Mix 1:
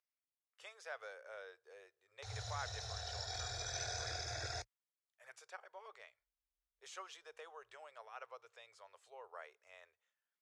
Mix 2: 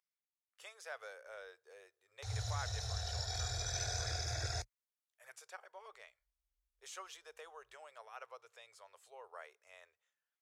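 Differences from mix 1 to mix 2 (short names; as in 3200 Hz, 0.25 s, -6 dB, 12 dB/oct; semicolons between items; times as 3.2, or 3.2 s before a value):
background: add low shelf 150 Hz +11 dB; master: remove air absorption 59 m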